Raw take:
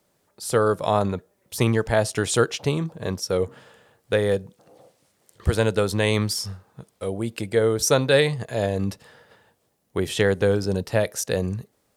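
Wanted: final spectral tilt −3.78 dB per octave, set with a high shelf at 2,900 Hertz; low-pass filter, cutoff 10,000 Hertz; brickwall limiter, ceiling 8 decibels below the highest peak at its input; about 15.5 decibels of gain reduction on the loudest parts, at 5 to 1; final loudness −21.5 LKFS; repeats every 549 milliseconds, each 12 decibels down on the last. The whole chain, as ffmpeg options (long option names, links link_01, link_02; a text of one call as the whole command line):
ffmpeg -i in.wav -af "lowpass=10000,highshelf=frequency=2900:gain=8.5,acompressor=threshold=-31dB:ratio=5,alimiter=limit=-24dB:level=0:latency=1,aecho=1:1:549|1098|1647:0.251|0.0628|0.0157,volume=14.5dB" out.wav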